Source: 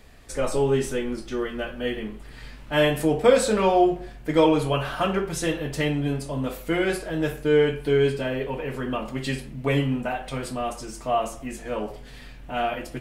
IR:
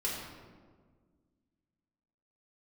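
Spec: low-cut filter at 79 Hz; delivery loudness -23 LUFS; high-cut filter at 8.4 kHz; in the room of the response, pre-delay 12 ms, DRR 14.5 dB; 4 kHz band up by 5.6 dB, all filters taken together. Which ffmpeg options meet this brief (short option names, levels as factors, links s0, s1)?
-filter_complex "[0:a]highpass=79,lowpass=8400,equalizer=f=4000:t=o:g=8,asplit=2[s0][s1];[1:a]atrim=start_sample=2205,adelay=12[s2];[s1][s2]afir=irnorm=-1:irlink=0,volume=0.112[s3];[s0][s3]amix=inputs=2:normalize=0,volume=1.12"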